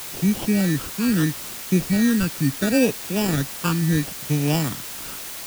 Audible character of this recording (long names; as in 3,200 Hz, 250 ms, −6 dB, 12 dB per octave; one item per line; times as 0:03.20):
aliases and images of a low sample rate 2,100 Hz, jitter 0%
phaser sweep stages 12, 0.75 Hz, lowest notch 630–1,500 Hz
a quantiser's noise floor 6 bits, dither triangular